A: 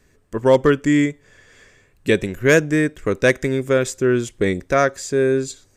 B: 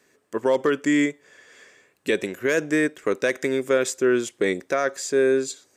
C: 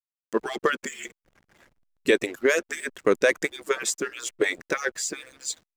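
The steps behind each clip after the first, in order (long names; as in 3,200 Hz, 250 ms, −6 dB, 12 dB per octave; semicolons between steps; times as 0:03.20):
high-pass filter 300 Hz 12 dB per octave; brickwall limiter −11 dBFS, peak gain reduction 9.5 dB
harmonic-percussive split with one part muted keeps percussive; slack as between gear wheels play −46 dBFS; level +3 dB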